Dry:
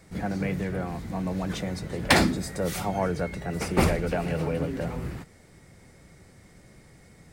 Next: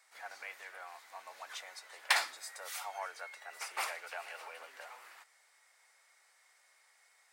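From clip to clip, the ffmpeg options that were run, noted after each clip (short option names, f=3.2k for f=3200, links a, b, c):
-af "highpass=f=850:w=0.5412,highpass=f=850:w=1.3066,volume=-7dB"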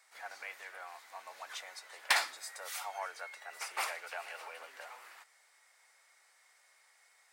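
-af "volume=19dB,asoftclip=hard,volume=-19dB,volume=1dB"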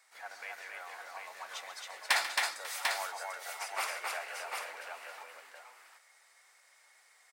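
-af "aecho=1:1:140|270|543|745:0.224|0.708|0.119|0.596"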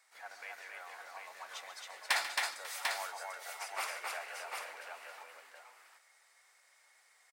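-af "aecho=1:1:147:0.0891,volume=-3dB"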